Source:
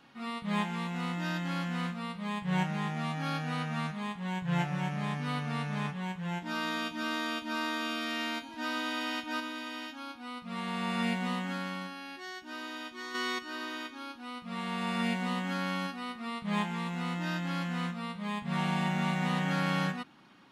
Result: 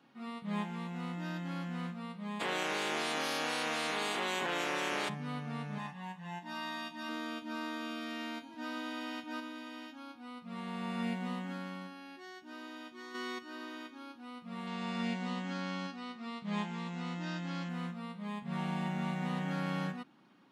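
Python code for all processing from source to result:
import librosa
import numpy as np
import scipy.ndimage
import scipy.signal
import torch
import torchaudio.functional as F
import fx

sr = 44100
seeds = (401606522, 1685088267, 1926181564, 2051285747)

y = fx.spec_clip(x, sr, under_db=28, at=(2.39, 5.08), fade=0.02)
y = fx.highpass(y, sr, hz=260.0, slope=12, at=(2.39, 5.08), fade=0.02)
y = fx.env_flatten(y, sr, amount_pct=100, at=(2.39, 5.08), fade=0.02)
y = fx.chain(y, sr, fx.highpass(hz=420.0, slope=6),
    fx.comb(ms=1.1, depth=0.71), at=(5.78, 7.09))
y = fx.chain(y, sr, fx.lowpass(hz=6600.0, slope=24),
    fx.high_shelf(hz=4900.0, db=12.0), at=(14.67, 17.69))
y = scipy.signal.sosfilt(scipy.signal.butter(2, 170.0, 'highpass', fs=sr, output='sos'), y)
y = fx.tilt_shelf(y, sr, db=4.0, hz=700.0)
y = F.gain(torch.from_numpy(y), -5.5).numpy()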